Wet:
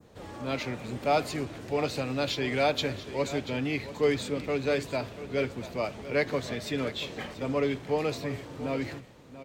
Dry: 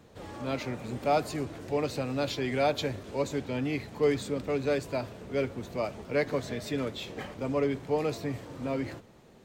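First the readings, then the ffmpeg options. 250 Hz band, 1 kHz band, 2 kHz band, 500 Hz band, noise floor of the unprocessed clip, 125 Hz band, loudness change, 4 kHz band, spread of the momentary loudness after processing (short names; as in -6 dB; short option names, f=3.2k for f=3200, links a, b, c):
0.0 dB, +1.0 dB, +4.0 dB, +0.5 dB, -55 dBFS, 0.0 dB, +1.0 dB, +4.5 dB, 8 LU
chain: -filter_complex "[0:a]adynamicequalizer=threshold=0.00562:dfrequency=3000:dqfactor=0.7:tfrequency=3000:tqfactor=0.7:attack=5:release=100:ratio=0.375:range=2.5:mode=boostabove:tftype=bell,asplit=2[a][b];[b]aecho=0:1:686:0.2[c];[a][c]amix=inputs=2:normalize=0"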